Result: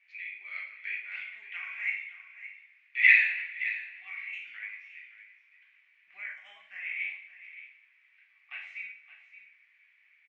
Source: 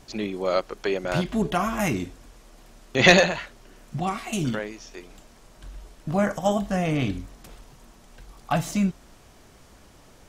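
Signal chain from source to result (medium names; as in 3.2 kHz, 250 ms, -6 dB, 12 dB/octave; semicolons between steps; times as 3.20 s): Butterworth band-pass 2.2 kHz, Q 4.3; delay 569 ms -13.5 dB; two-slope reverb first 0.52 s, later 1.7 s, DRR -2.5 dB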